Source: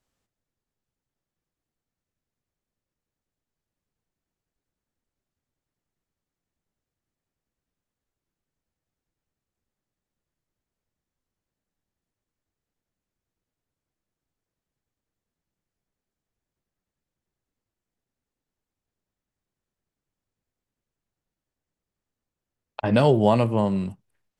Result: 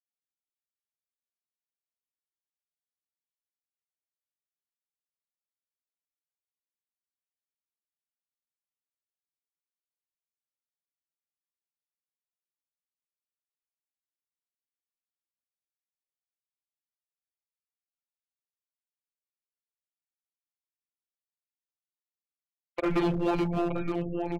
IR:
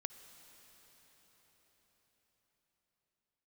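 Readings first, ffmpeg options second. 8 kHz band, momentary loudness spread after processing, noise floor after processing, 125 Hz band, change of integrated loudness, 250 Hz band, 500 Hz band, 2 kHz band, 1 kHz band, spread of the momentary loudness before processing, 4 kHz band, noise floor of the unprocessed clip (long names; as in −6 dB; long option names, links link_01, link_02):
can't be measured, 5 LU, below −85 dBFS, −9.5 dB, −8.0 dB, −5.0 dB, −8.5 dB, −4.5 dB, −7.5 dB, 12 LU, −8.0 dB, below −85 dBFS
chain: -filter_complex "[0:a]asplit=2[link_01][link_02];[link_02]acontrast=65,volume=2dB[link_03];[link_01][link_03]amix=inputs=2:normalize=0,afreqshift=-260,afftfilt=real='re*gte(hypot(re,im),0.0447)':imag='im*gte(hypot(re,im),0.0447)':win_size=1024:overlap=0.75,bass=frequency=250:gain=-8,treble=frequency=4000:gain=-10,acompressor=threshold=-14dB:ratio=2.5,afftfilt=real='hypot(re,im)*cos(PI*b)':imag='0':win_size=1024:overlap=0.75,asplit=2[link_04][link_05];[link_05]adelay=921,lowpass=frequency=2200:poles=1,volume=-9dB,asplit=2[link_06][link_07];[link_07]adelay=921,lowpass=frequency=2200:poles=1,volume=0.18,asplit=2[link_08][link_09];[link_09]adelay=921,lowpass=frequency=2200:poles=1,volume=0.18[link_10];[link_06][link_08][link_10]amix=inputs=3:normalize=0[link_11];[link_04][link_11]amix=inputs=2:normalize=0,tremolo=f=170:d=0.182,asoftclip=type=hard:threshold=-19.5dB,alimiter=limit=-23dB:level=0:latency=1:release=58,lowshelf=frequency=200:gain=-5,volume=3dB"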